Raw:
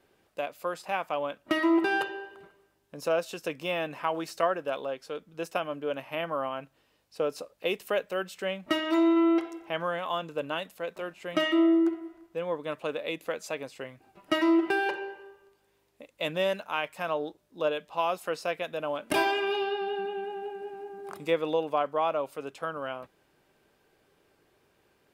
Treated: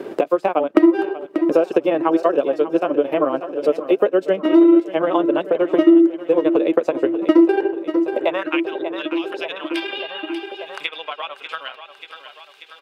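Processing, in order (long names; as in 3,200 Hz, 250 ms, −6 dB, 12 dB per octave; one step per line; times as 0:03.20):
spectral tilt −3.5 dB per octave
transient designer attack +4 dB, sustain −7 dB
in parallel at +3 dB: downward compressor, threshold −29 dBFS, peak gain reduction 15 dB
on the sum: high-pass filter sweep 340 Hz → 3,500 Hz, 0:15.80–0:16.98
time stretch by overlap-add 0.51×, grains 77 ms
on a send: repeating echo 588 ms, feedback 56%, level −15 dB
on the sum: multiband upward and downward compressor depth 70%
level +2 dB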